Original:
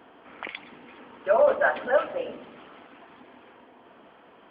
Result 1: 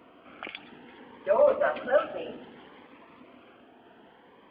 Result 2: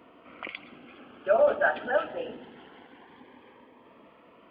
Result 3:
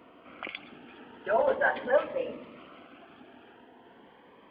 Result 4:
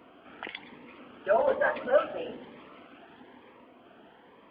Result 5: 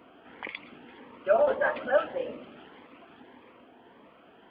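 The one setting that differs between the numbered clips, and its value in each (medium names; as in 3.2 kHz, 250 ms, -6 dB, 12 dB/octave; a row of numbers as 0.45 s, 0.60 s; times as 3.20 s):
Shepard-style phaser, rate: 0.63 Hz, 0.23 Hz, 0.41 Hz, 1.1 Hz, 1.7 Hz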